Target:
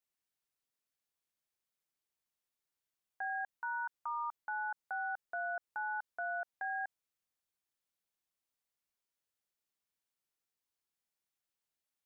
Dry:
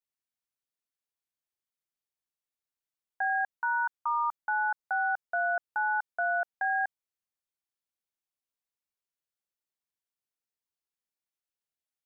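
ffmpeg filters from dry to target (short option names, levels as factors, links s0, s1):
-af "alimiter=level_in=2.82:limit=0.0631:level=0:latency=1:release=43,volume=0.355,volume=1.19"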